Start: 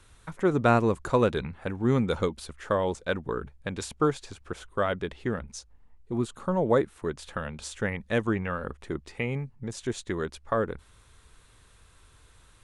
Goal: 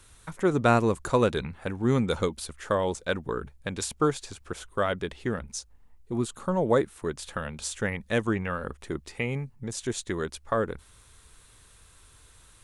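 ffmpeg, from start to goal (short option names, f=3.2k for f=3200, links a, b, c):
-af "highshelf=f=5.4k:g=9.5"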